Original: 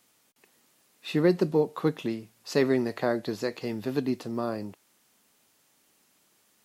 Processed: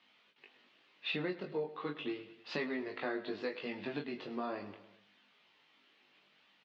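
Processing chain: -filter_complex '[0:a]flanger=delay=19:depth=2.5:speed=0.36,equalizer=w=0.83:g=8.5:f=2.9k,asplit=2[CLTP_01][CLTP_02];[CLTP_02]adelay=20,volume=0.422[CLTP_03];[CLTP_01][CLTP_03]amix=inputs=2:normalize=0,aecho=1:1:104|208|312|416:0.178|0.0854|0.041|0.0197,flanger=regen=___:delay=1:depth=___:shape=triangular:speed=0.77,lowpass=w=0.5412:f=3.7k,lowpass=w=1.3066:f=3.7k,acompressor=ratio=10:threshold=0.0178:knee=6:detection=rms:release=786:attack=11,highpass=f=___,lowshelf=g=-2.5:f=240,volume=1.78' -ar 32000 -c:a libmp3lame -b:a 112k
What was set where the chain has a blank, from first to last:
-66, 2.1, 180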